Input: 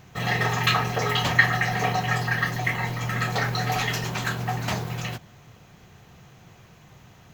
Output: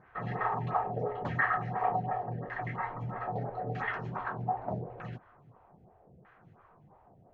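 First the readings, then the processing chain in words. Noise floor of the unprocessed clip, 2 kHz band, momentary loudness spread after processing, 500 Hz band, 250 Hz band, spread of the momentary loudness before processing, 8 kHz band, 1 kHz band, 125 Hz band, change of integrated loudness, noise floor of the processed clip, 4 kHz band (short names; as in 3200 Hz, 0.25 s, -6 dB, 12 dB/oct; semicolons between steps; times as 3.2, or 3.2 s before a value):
-52 dBFS, -13.0 dB, 8 LU, -5.0 dB, -9.5 dB, 8 LU, under -40 dB, -4.5 dB, -11.0 dB, -9.5 dB, -62 dBFS, -30.0 dB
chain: LFO low-pass saw down 0.8 Hz 520–1700 Hz; photocell phaser 2.9 Hz; gain -6.5 dB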